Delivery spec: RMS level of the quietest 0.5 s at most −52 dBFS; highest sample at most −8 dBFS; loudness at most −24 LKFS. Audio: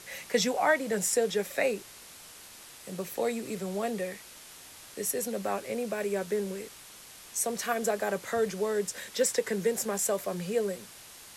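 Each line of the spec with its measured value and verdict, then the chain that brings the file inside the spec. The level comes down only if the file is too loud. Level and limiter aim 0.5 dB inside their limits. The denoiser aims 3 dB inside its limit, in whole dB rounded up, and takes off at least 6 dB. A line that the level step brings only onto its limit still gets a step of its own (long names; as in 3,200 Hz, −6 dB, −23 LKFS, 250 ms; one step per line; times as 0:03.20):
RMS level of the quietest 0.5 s −50 dBFS: out of spec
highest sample −12.5 dBFS: in spec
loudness −30.5 LKFS: in spec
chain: broadband denoise 6 dB, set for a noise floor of −50 dBFS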